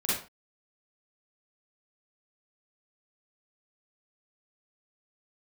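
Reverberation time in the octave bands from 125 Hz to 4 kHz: 0.30 s, 0.35 s, 0.35 s, 0.40 s, no reading, 0.30 s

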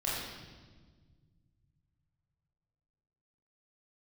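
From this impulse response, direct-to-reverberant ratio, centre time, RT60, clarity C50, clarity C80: -7.5 dB, 89 ms, 1.5 s, -1.0 dB, 1.5 dB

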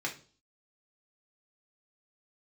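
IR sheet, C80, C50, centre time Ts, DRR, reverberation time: 18.0 dB, 12.0 dB, 14 ms, -1.0 dB, 0.40 s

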